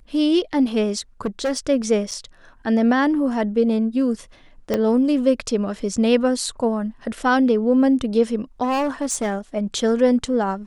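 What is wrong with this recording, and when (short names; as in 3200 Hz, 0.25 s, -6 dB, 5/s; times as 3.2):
1.25–1.59 clipped -18 dBFS
2.11–2.12 gap 6.2 ms
4.74 pop -8 dBFS
8.63–9.38 clipped -18 dBFS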